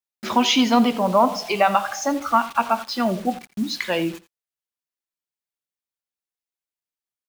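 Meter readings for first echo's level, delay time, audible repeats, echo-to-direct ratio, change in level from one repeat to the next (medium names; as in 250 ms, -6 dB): -17.0 dB, 85 ms, 1, -17.0 dB, no regular repeats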